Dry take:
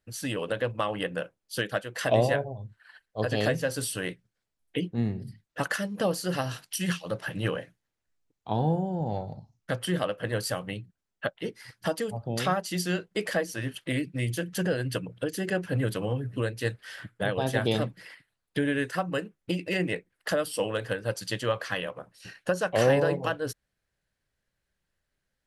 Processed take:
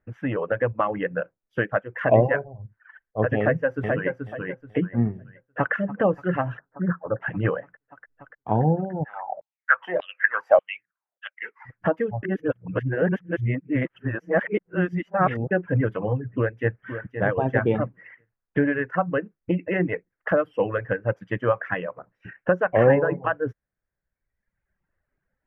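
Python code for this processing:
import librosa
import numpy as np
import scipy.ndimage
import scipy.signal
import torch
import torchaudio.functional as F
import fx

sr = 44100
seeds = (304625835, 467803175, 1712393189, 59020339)

y = fx.echo_throw(x, sr, start_s=3.4, length_s=0.71, ms=430, feedback_pct=35, wet_db=-3.5)
y = fx.echo_throw(y, sr, start_s=5.3, length_s=0.43, ms=290, feedback_pct=85, wet_db=-12.0)
y = fx.ellip_lowpass(y, sr, hz=1500.0, order=4, stop_db=50, at=(6.59, 7.21))
y = fx.filter_lfo_highpass(y, sr, shape='saw_down', hz=1.7, low_hz=540.0, high_hz=4100.0, q=6.9, at=(9.03, 11.64), fade=0.02)
y = fx.echo_throw(y, sr, start_s=16.31, length_s=0.49, ms=520, feedback_pct=25, wet_db=-9.0)
y = fx.edit(y, sr, fx.reverse_span(start_s=12.23, length_s=3.28), tone=tone)
y = fx.dereverb_blind(y, sr, rt60_s=1.2)
y = scipy.signal.sosfilt(scipy.signal.cheby2(4, 40, 4000.0, 'lowpass', fs=sr, output='sos'), y)
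y = y * librosa.db_to_amplitude(6.5)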